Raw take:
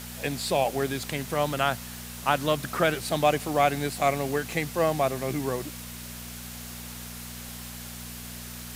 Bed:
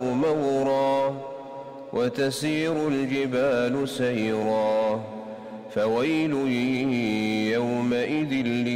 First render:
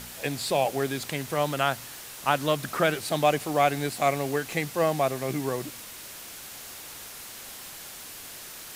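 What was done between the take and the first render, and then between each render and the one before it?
de-hum 60 Hz, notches 4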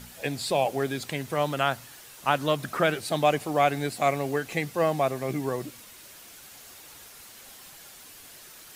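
noise reduction 7 dB, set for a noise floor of -42 dBFS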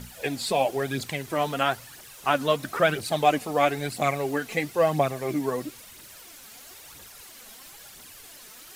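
phaser 1 Hz, delay 4.8 ms, feedback 50%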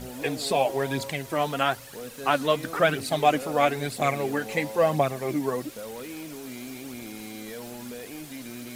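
add bed -15 dB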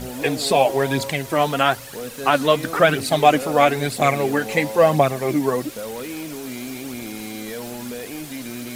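trim +7 dB; peak limiter -3 dBFS, peak gain reduction 3 dB

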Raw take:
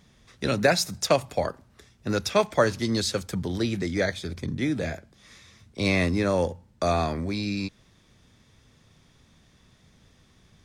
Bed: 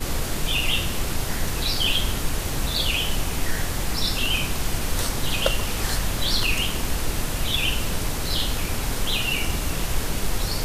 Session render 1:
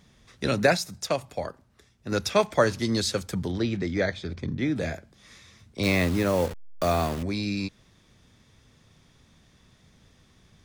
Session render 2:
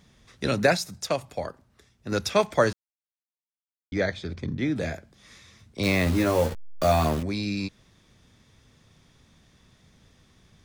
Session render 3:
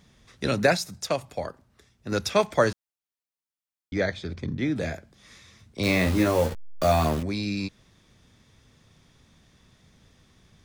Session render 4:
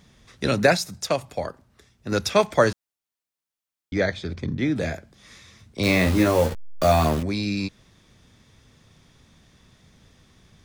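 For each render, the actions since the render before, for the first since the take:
0.77–2.12 s: gain -5.5 dB; 3.51–4.76 s: distance through air 110 m; 5.83–7.23 s: send-on-delta sampling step -32 dBFS
2.73–3.92 s: mute; 6.05–7.20 s: doubling 13 ms -2.5 dB
5.83–6.28 s: doubling 38 ms -7.5 dB
trim +3 dB

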